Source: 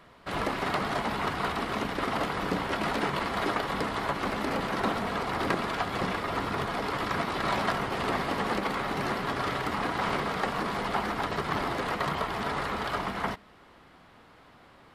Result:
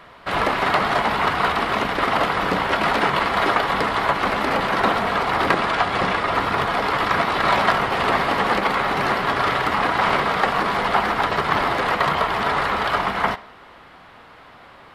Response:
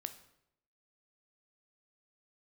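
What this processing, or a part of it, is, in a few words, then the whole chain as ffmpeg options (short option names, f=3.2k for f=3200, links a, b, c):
filtered reverb send: -filter_complex "[0:a]asettb=1/sr,asplit=3[a][b][c];[a]atrim=end=5.544[d];[b]atrim=start=5.54:end=6.34,asetpts=PTS-STARTPTS,afade=t=in:d=0.004:c=qsin,afade=t=out:st=0.796:d=0.004:c=qsin,lowpass=f=11k:w=0.5412,lowpass=f=11k:w=1.3066[e];[c]atrim=start=6.336[f];[d][e]acrossfade=d=0.004:c1=hsin:c2=qsin[g];[g][f]acrossfade=d=0.004:c1=qsin:c2=hsin,asplit=2[h][i];[i]highpass=450,lowpass=4.6k[j];[1:a]atrim=start_sample=2205[k];[j][k]afir=irnorm=-1:irlink=0,volume=1.5dB[l];[h][l]amix=inputs=2:normalize=0,volume=6dB"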